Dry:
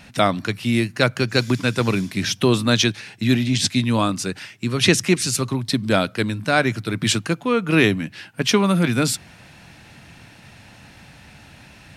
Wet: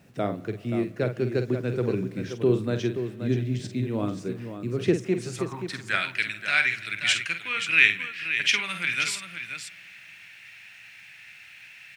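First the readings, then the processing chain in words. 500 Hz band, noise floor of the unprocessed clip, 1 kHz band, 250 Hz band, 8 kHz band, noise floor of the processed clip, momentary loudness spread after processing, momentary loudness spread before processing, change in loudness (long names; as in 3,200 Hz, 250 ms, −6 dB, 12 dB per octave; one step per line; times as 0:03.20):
−6.0 dB, −47 dBFS, −11.0 dB, −9.5 dB, −11.5 dB, −49 dBFS, 23 LU, 7 LU, −5.5 dB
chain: octave-band graphic EQ 125/250/500/1,000/4,000/8,000 Hz +5/−7/−8/−9/−4/+5 dB
band-pass filter sweep 420 Hz → 2,300 Hz, 0:05.02–0:06.09
bit-depth reduction 12 bits, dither none
multi-tap delay 48/528 ms −8.5/−9 dB
spring reverb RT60 3.5 s, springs 58 ms, chirp 60 ms, DRR 18 dB
level +7 dB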